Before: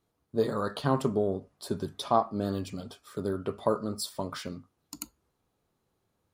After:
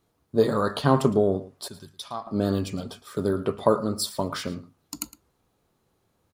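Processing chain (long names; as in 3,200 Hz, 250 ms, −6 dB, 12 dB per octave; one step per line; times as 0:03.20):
0:01.68–0:02.27: guitar amp tone stack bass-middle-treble 5-5-5
single-tap delay 111 ms −17.5 dB
level +6.5 dB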